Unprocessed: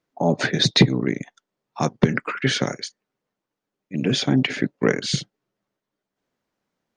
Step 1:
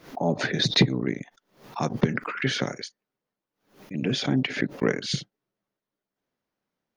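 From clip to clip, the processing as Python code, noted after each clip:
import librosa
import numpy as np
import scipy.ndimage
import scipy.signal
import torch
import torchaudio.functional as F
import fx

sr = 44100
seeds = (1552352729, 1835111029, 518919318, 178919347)

y = fx.peak_eq(x, sr, hz=7900.0, db=-10.5, octaves=0.28)
y = fx.pre_swell(y, sr, db_per_s=140.0)
y = y * 10.0 ** (-5.0 / 20.0)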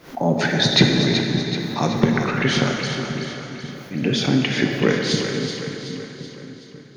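y = fx.echo_split(x, sr, split_hz=360.0, low_ms=534, high_ms=378, feedback_pct=52, wet_db=-8.5)
y = fx.rev_plate(y, sr, seeds[0], rt60_s=3.1, hf_ratio=0.8, predelay_ms=0, drr_db=2.0)
y = y * 10.0 ** (4.5 / 20.0)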